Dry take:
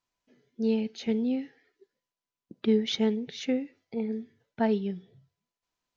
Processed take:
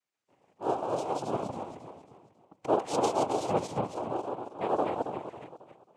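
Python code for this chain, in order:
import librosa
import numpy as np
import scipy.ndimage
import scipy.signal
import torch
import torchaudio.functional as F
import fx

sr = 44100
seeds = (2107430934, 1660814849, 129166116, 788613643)

y = fx.reverse_delay_fb(x, sr, ms=136, feedback_pct=62, wet_db=0)
y = fx.spec_repair(y, sr, seeds[0], start_s=4.56, length_s=0.8, low_hz=1200.0, high_hz=3300.0, source='both')
y = fx.fixed_phaser(y, sr, hz=800.0, stages=6)
y = fx.noise_vocoder(y, sr, seeds[1], bands=4)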